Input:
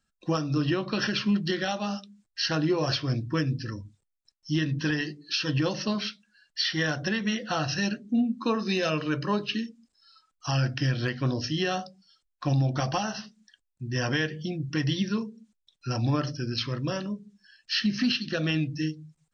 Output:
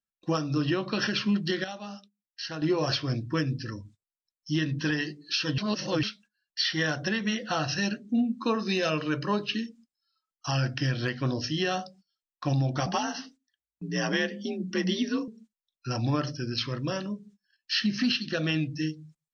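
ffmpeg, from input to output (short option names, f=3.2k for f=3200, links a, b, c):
-filter_complex "[0:a]asettb=1/sr,asplit=3[a][b][c];[a]atrim=end=12.864[d];[b]atrim=start=12.86:end=15.28,asetpts=PTS-STARTPTS,afade=t=in:d=0.004:c=qsin,afade=t=out:st=2.416:d=0.004:c=qsin,afreqshift=50[e];[c]atrim=start=15.276[f];[d][e]acrossfade=d=0.004:c1=hsin:c2=qsin[g];[g][f]acrossfade=d=0.004:c1=qsin:c2=hsin,asplit=5[h][i][j][k][l];[h]atrim=end=1.642[m];[i]atrim=start=1.638:end=2.622,asetpts=PTS-STARTPTS,volume=-8.5dB[n];[j]atrim=start=2.618:end=5.582[o];[k]atrim=start=5.578:end=6.032,asetpts=PTS-STARTPTS,areverse[p];[l]atrim=start=6.028[q];[m][n]acrossfade=d=0.004:c1=hsin:c2=hsin[r];[r][o]acrossfade=d=0.004:c1=hsin:c2=hsin[s];[s][p]acrossfade=d=0.004:c1=hsin:c2=hsin[t];[t][q]acrossfade=d=0.004:c1=hsin:c2=hsin,lowshelf=f=110:g=-5,agate=range=-20dB:threshold=-52dB:ratio=16:detection=peak"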